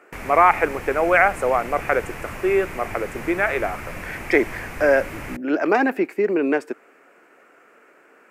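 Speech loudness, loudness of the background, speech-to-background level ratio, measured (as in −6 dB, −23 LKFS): −21.0 LKFS, −34.5 LKFS, 13.5 dB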